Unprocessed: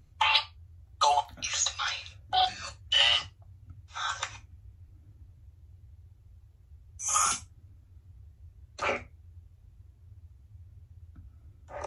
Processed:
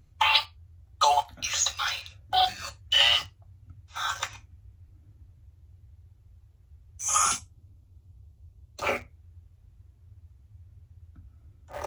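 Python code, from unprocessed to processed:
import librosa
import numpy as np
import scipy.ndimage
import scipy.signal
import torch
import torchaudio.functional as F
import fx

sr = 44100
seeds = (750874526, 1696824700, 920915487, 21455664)

p1 = fx.peak_eq(x, sr, hz=1700.0, db=-10.0, octaves=0.82, at=(7.39, 8.87))
p2 = fx.quant_dither(p1, sr, seeds[0], bits=6, dither='none')
y = p1 + F.gain(torch.from_numpy(p2), -10.0).numpy()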